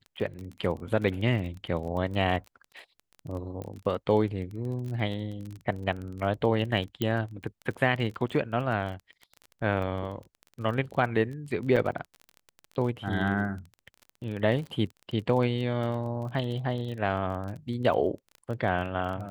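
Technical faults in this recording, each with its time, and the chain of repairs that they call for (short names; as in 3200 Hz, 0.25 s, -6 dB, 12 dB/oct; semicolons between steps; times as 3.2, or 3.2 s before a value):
crackle 25/s -35 dBFS
3.62 pop -25 dBFS
7.02 pop -15 dBFS
11.76–11.77 gap 6.1 ms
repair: de-click; interpolate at 11.76, 6.1 ms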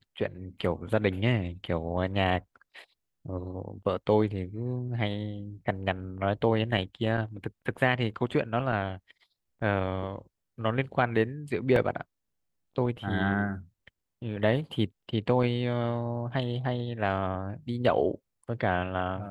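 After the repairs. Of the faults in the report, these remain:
none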